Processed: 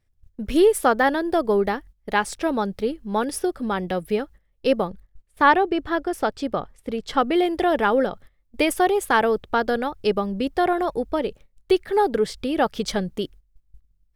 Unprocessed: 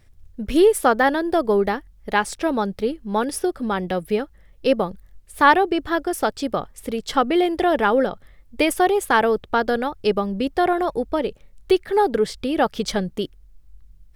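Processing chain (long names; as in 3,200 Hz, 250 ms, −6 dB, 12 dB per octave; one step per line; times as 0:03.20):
0:04.87–0:07.18: high-shelf EQ 5,600 Hz −9.5 dB
noise gate −40 dBFS, range −15 dB
level −1.5 dB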